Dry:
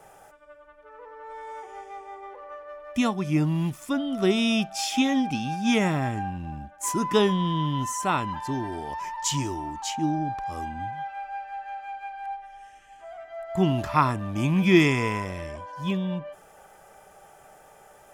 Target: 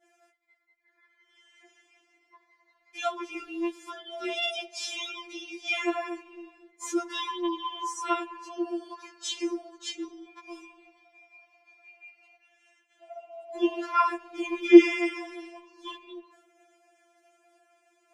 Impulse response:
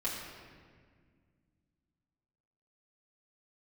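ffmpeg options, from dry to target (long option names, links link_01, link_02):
-filter_complex "[0:a]agate=range=-33dB:threshold=-46dB:ratio=3:detection=peak,highpass=120,lowpass=6100,asplit=2[link_01][link_02];[1:a]atrim=start_sample=2205,adelay=66[link_03];[link_02][link_03]afir=irnorm=-1:irlink=0,volume=-26dB[link_04];[link_01][link_04]amix=inputs=2:normalize=0,afftfilt=real='re*4*eq(mod(b,16),0)':imag='im*4*eq(mod(b,16),0)':win_size=2048:overlap=0.75"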